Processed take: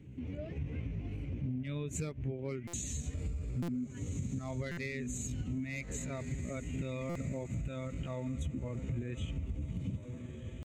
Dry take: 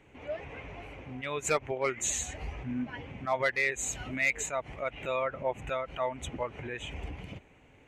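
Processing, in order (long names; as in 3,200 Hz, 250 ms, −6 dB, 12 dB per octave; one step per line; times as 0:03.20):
feedback delay with all-pass diffusion 1,000 ms, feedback 41%, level −12.5 dB
tempo change 0.74×
drawn EQ curve 250 Hz 0 dB, 820 Hz −25 dB, 1,900 Hz −19 dB, 4,300 Hz −13 dB
downward compressor 12 to 1, threshold −45 dBFS, peak gain reduction 15 dB
high-pass filter 70 Hz 12 dB per octave
low-shelf EQ 160 Hz +7.5 dB
buffer that repeats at 0:02.67/0:03.62/0:04.71/0:07.09, samples 256, times 10
level +9 dB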